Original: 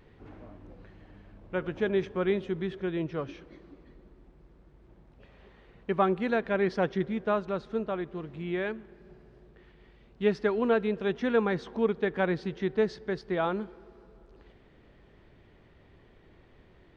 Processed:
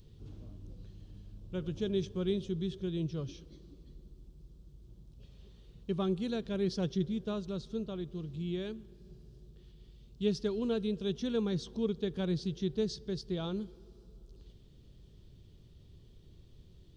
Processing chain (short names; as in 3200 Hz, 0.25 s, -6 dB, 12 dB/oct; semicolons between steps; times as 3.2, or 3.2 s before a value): EQ curve 140 Hz 0 dB, 270 Hz -10 dB, 400 Hz -10 dB, 780 Hz -21 dB, 1200 Hz -19 dB, 2000 Hz -24 dB, 3300 Hz -3 dB, 5900 Hz +4 dB; gain +4 dB